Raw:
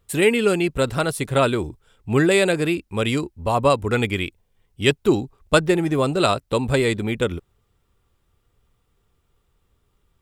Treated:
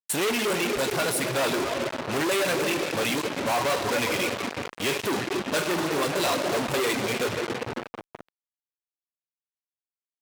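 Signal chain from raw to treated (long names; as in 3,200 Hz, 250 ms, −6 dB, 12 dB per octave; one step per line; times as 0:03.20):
notch filter 1,300 Hz, Q 6.8
rectangular room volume 140 cubic metres, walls hard, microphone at 0.33 metres
reverb reduction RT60 1.1 s
fuzz pedal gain 39 dB, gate −32 dBFS
high-pass filter 410 Hz 6 dB per octave
level −7.5 dB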